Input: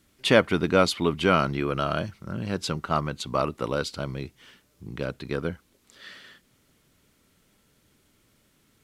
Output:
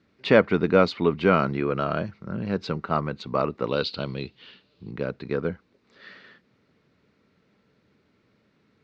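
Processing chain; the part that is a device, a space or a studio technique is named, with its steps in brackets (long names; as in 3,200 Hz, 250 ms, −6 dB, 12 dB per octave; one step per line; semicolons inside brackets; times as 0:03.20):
0:03.68–0:04.91: flat-topped bell 3,500 Hz +12 dB 1 octave
guitar cabinet (loudspeaker in its box 87–4,200 Hz, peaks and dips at 200 Hz +4 dB, 450 Hz +5 dB, 3,200 Hz −9 dB)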